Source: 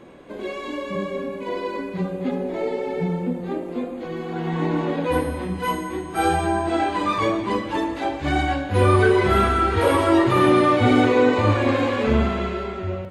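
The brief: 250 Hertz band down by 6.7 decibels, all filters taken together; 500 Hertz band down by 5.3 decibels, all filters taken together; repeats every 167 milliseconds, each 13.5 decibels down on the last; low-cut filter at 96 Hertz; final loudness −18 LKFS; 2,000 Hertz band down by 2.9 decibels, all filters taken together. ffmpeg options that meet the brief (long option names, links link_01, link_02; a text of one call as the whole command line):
ffmpeg -i in.wav -af "highpass=96,equalizer=frequency=250:width_type=o:gain=-7.5,equalizer=frequency=500:width_type=o:gain=-4,equalizer=frequency=2000:width_type=o:gain=-3.5,aecho=1:1:167|334:0.211|0.0444,volume=7.5dB" out.wav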